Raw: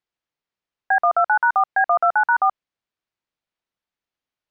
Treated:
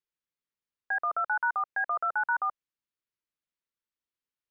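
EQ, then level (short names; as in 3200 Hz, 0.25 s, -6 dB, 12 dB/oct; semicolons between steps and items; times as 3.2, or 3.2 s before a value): bell 730 Hz -13.5 dB 0.31 oct; -8.5 dB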